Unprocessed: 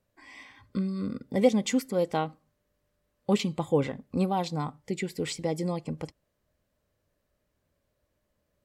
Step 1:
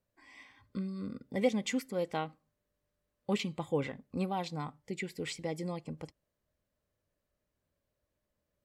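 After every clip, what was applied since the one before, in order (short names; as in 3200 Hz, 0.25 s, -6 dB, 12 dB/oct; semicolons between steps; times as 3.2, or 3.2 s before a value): dynamic EQ 2200 Hz, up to +6 dB, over -47 dBFS, Q 1.1; gain -7.5 dB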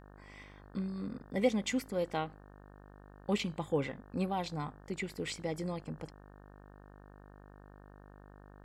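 buzz 50 Hz, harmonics 36, -55 dBFS -4 dB/oct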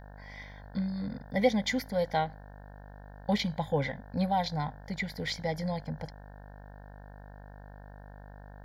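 fixed phaser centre 1800 Hz, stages 8; gain +8.5 dB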